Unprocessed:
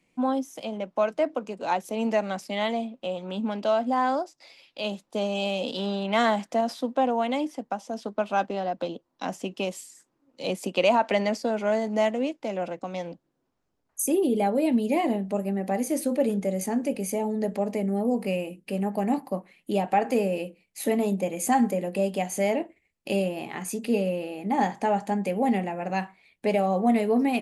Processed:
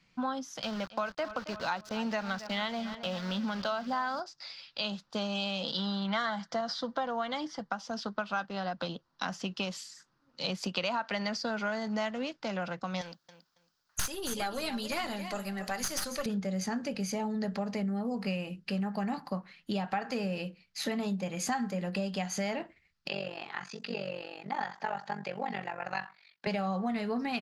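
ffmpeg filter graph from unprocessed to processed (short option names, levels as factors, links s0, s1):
-filter_complex "[0:a]asettb=1/sr,asplit=3[s0][s1][s2];[s0]atrim=end=0.624[s3];[s1]atrim=start=0.62:end=4.2,asetpts=PTS-STARTPTS,afade=t=in:d=0.004:c=qsin,afade=t=out:st=3.576:d=0.004:c=qsin,aeval=exprs='val(0)*gte(abs(val(0)),0.00944)':c=same,asplit=2[s4][s5];[s5]adelay=273,lowpass=f=3500:p=1,volume=0.158,asplit=2[s6][s7];[s7]adelay=273,lowpass=f=3500:p=1,volume=0.51,asplit=2[s8][s9];[s9]adelay=273,lowpass=f=3500:p=1,volume=0.51,asplit=2[s10][s11];[s11]adelay=273,lowpass=f=3500:p=1,volume=0.51,asplit=2[s12][s13];[s13]adelay=273,lowpass=f=3500:p=1,volume=0.51[s14];[s4][s6][s8][s10][s12][s14]amix=inputs=6:normalize=0,atrim=end_sample=157878[s15];[s2]atrim=start=4.196[s16];[s3][s15]acrossfade=d=0.004:c1=hsin:c2=qsin[s17];[s17][s16]acrossfade=d=0.004:c1=qsin:c2=hsin,asettb=1/sr,asplit=3[s18][s19][s20];[s18]atrim=end=5.634[s21];[s19]atrim=start=5.63:end=7.72,asetpts=PTS-STARTPTS,afade=t=in:d=0.004:c=qsin,afade=t=out:st=2.086:d=0.004:c=qsin,lowpass=7600,bandreject=f=2600:w=5.5,aecho=1:1:6:0.35,atrim=end_sample=92169[s22];[s20]atrim=start=7.716[s23];[s21][s22]acrossfade=d=0.004:c1=hsin:c2=qsin[s24];[s24][s23]acrossfade=d=0.004:c1=qsin:c2=hsin,asettb=1/sr,asplit=3[s25][s26][s27];[s25]atrim=end=13.014[s28];[s26]atrim=start=13.01:end=16.26,asetpts=PTS-STARTPTS,afade=t=in:d=0.004:c=qsin,afade=t=out:st=3.246:d=0.004:c=qsin,aemphasis=mode=production:type=riaa,aecho=1:1:276|552:0.224|0.0403,atrim=end_sample=143325,aeval=exprs='(tanh(4.47*val(0)+0.5)-tanh(0.5))/4.47':c=same[s29];[s27]atrim=start=16.256[s30];[s28][s29]acrossfade=d=0.004:c1=hsin:c2=qsin[s31];[s31][s30]acrossfade=d=0.004:c1=qsin:c2=hsin,asettb=1/sr,asplit=3[s32][s33][s34];[s32]atrim=end=23.084[s35];[s33]atrim=start=23.08:end=26.47,asetpts=PTS-STARTPTS,afade=t=in:d=0.004:c=qsin,afade=t=out:st=3.386:d=0.004:c=qsin,acrossover=split=4700[s36][s37];[s37]acompressor=threshold=0.00158:ratio=4:attack=1:release=60[s38];[s36][s38]amix=inputs=2:normalize=0,highpass=380,lowpass=7900,tremolo=f=47:d=0.889[s39];[s34]atrim=start=26.466[s40];[s35][s39]acrossfade=d=0.004:c1=hsin:c2=qsin[s41];[s41][s40]acrossfade=d=0.004:c1=qsin:c2=hsin,firequalizer=gain_entry='entry(170,0);entry(280,-12);entry(630,-9);entry(1400,6);entry(2200,-4);entry(4700,6);entry(8700,-16)':delay=0.05:min_phase=1,acompressor=threshold=0.0178:ratio=4,volume=1.68"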